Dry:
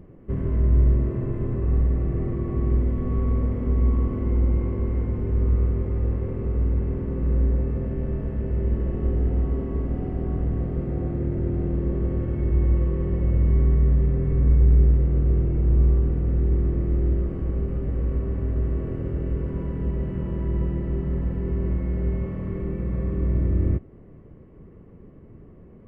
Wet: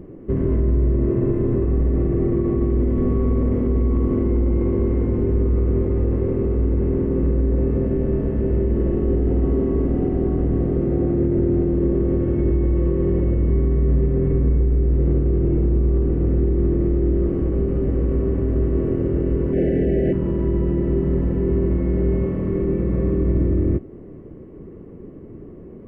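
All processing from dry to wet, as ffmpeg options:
-filter_complex "[0:a]asettb=1/sr,asplit=3[s0][s1][s2];[s0]atrim=end=19.534[s3];[s1]atrim=start=19.53:end=20.13,asetpts=PTS-STARTPTS,afade=t=in:d=0.004:c=qsin,afade=t=out:st=0.596:d=0.004:c=qsin,asuperstop=centerf=1100:order=8:qfactor=1.2,equalizer=f=1200:w=0.32:g=13[s4];[s2]atrim=start=20.126[s5];[s3][s4]acrossfade=d=0.004:c1=hsin:c2=qsin[s6];[s6][s5]acrossfade=d=0.004:c1=qsin:c2=hsin,equalizer=f=340:t=o:w=1.3:g=9.5,alimiter=limit=0.178:level=0:latency=1:release=30,volume=1.5"

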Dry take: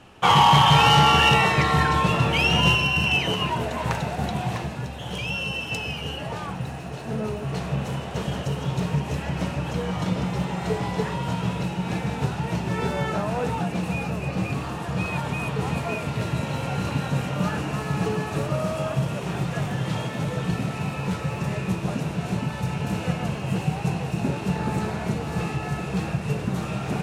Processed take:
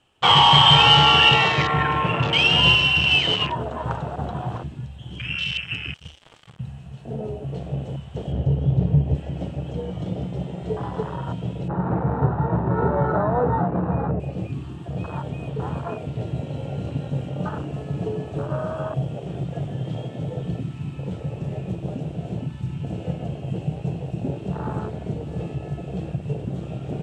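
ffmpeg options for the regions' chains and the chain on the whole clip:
-filter_complex "[0:a]asettb=1/sr,asplit=3[s0][s1][s2];[s0]atrim=end=1.134[s3];[s1]atrim=start=1.13:end=2.58,asetpts=PTS-STARTPTS,afade=t=in:d=0.004:c=qsin,afade=t=out:st=1.446:d=0.004:c=qsin,acrossover=split=8000[s4][s5];[s5]acompressor=threshold=0.00126:ratio=4:attack=1:release=60[s6];[s4][s6]amix=inputs=2:normalize=0,equalizer=f=68:w=6.2:g=-12.5[s7];[s2]atrim=start=2.576[s8];[s3][s7]acrossfade=d=0.004:c1=hsin:c2=qsin[s9];[s9][s8]acrossfade=d=0.004:c1=qsin:c2=hsin,asettb=1/sr,asplit=3[s10][s11][s12];[s10]atrim=end=5.944[s13];[s11]atrim=start=5.94:end=6.59,asetpts=PTS-STARTPTS,afade=t=in:d=0.004:c=qsin,afade=t=out:st=0.646:d=0.004:c=qsin,highshelf=f=4900:g=7,acrusher=bits=3:mix=0:aa=0.5[s14];[s12]atrim=start=6.586[s15];[s13][s14]acrossfade=d=0.004:c1=hsin:c2=qsin[s16];[s16][s15]acrossfade=d=0.004:c1=qsin:c2=hsin,asettb=1/sr,asplit=3[s17][s18][s19];[s17]atrim=end=8.324[s20];[s18]atrim=start=8.32:end=9.15,asetpts=PTS-STARTPTS,afade=t=in:d=0.004:c=qsin,afade=t=out:st=0.826:d=0.004:c=qsin,acrossover=split=6400[s21][s22];[s22]acompressor=threshold=0.00158:ratio=4:attack=1:release=60[s23];[s21][s23]amix=inputs=2:normalize=0,highpass=50,aemphasis=mode=reproduction:type=bsi[s24];[s19]atrim=start=9.146[s25];[s20][s24]acrossfade=d=0.004:c1=hsin:c2=qsin[s26];[s26][s25]acrossfade=d=0.004:c1=qsin:c2=hsin,asettb=1/sr,asplit=3[s27][s28][s29];[s27]atrim=end=11.684[s30];[s28]atrim=start=11.68:end=14.2,asetpts=PTS-STARTPTS,afade=t=in:d=0.004:c=qsin,afade=t=out:st=2.516:d=0.004:c=qsin,lowpass=f=1700:w=0.5412,lowpass=f=1700:w=1.3066,acontrast=59[s31];[s29]atrim=start=14.196[s32];[s30][s31]acrossfade=d=0.004:c1=hsin:c2=qsin[s33];[s33][s32]acrossfade=d=0.004:c1=qsin:c2=hsin,equalizer=f=200:t=o:w=0.33:g=-7,equalizer=f=3150:t=o:w=0.33:g=10,equalizer=f=8000:t=o:w=0.33:g=9,acrossover=split=7000[s34][s35];[s35]acompressor=threshold=0.00158:ratio=4:attack=1:release=60[s36];[s34][s36]amix=inputs=2:normalize=0,afwtdn=0.0562"

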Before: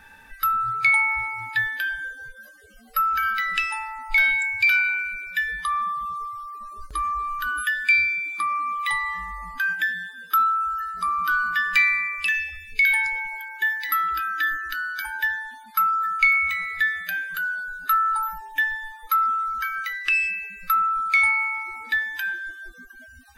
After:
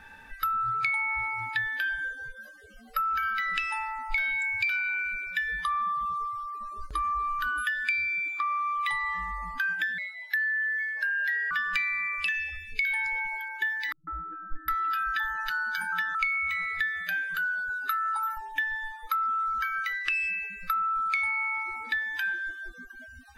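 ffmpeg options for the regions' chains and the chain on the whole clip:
-filter_complex "[0:a]asettb=1/sr,asplit=3[s0][s1][s2];[s0]atrim=end=8.284[s3];[s1]atrim=start=8.28:end=8.76,asetpts=PTS-STARTPTS,afade=t=in:d=0.004:c=qsin,afade=t=out:st=0.476:d=0.004:c=qsin,highpass=510,lowpass=3700,aeval=exprs='sgn(val(0))*max(abs(val(0))-0.002,0)':c=same[s4];[s2]atrim=start=8.756[s5];[s3][s4]acrossfade=d=0.004:c1=hsin:c2=qsin[s6];[s6][s5]acrossfade=d=0.004:c1=qsin:c2=hsin,asettb=1/sr,asplit=3[s7][s8][s9];[s7]atrim=end=9.984[s10];[s8]atrim=start=9.98:end=11.51,asetpts=PTS-STARTPTS,afade=t=in:d=0.004:c=qsin,afade=t=out:st=1.526:d=0.004:c=qsin,bass=f=250:g=-12,treble=f=4000:g=-6,afreqshift=430[s11];[s9]atrim=start=11.506[s12];[s10][s11]acrossfade=d=0.004:c1=hsin:c2=qsin[s13];[s13][s12]acrossfade=d=0.004:c1=qsin:c2=hsin,asettb=1/sr,asplit=3[s14][s15][s16];[s14]atrim=end=13.924[s17];[s15]atrim=start=13.92:end=16.15,asetpts=PTS-STARTPTS,afade=t=in:d=0.004:c=qsin,afade=t=out:st=2.226:d=0.004:c=qsin,lowshelf=f=110:g=10,aecho=1:1:5.9:0.76,atrim=end_sample=98343,acrossover=split=160|870[s18][s19][s20];[s19]adelay=150[s21];[s20]adelay=760[s22];[s18][s21][s22]amix=inputs=3:normalize=0,atrim=end_sample=98343[s23];[s16]atrim=start=16.146[s24];[s17][s23]acrossfade=d=0.004:c1=hsin:c2=qsin[s25];[s25][s24]acrossfade=d=0.004:c1=qsin:c2=hsin,asettb=1/sr,asplit=3[s26][s27][s28];[s26]atrim=end=17.694[s29];[s27]atrim=start=17.69:end=18.37,asetpts=PTS-STARTPTS,afade=t=in:d=0.004:c=qsin,afade=t=out:st=0.676:d=0.004:c=qsin,highpass=f=320:w=0.5412,highpass=f=320:w=1.3066,aecho=1:1:7.3:0.8,atrim=end_sample=29988[s30];[s28]atrim=start=18.366[s31];[s29][s30]acrossfade=d=0.004:c1=hsin:c2=qsin[s32];[s32][s31]acrossfade=d=0.004:c1=qsin:c2=hsin,highshelf=f=7400:g=-10.5,acompressor=threshold=0.0501:ratio=6"

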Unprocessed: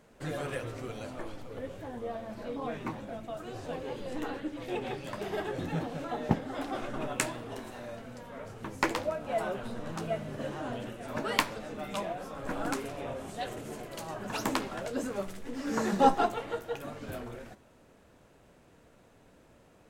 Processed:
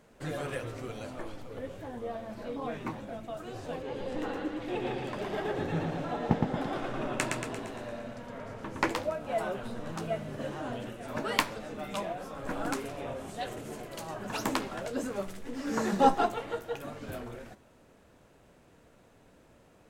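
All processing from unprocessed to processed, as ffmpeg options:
-filter_complex "[0:a]asettb=1/sr,asplit=3[s0][s1][s2];[s0]atrim=end=3.824[s3];[s1]atrim=start=3.82:end=8.9,asetpts=PTS-STARTPTS,afade=t=in:d=0.004:c=qsin,afade=t=out:st=5.076:d=0.004:c=qsin,highshelf=f=7500:g=-9.5,aecho=1:1:115|230|345|460|575|690|805:0.668|0.361|0.195|0.105|0.0568|0.0307|0.0166,atrim=end_sample=224028[s4];[s2]atrim=start=8.896[s5];[s3][s4]acrossfade=d=0.004:c1=hsin:c2=qsin[s6];[s6][s5]acrossfade=d=0.004:c1=qsin:c2=hsin"

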